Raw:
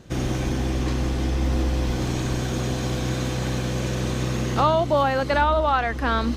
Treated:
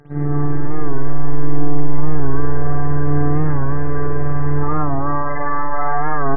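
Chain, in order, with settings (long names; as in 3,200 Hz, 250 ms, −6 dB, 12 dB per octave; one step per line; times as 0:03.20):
Butterworth low-pass 1,900 Hz 72 dB per octave
comb filter 2.5 ms, depth 75%
brickwall limiter −18.5 dBFS, peak gain reduction 12.5 dB
phases set to zero 145 Hz
phase shifter 0.63 Hz, delay 2.2 ms, feedback 36%
echo with a time of its own for lows and highs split 500 Hz, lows 146 ms, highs 457 ms, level −4 dB
spring reverb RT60 1.5 s, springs 48/54 ms, chirp 80 ms, DRR −7.5 dB
wow of a warped record 45 rpm, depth 100 cents
level −2.5 dB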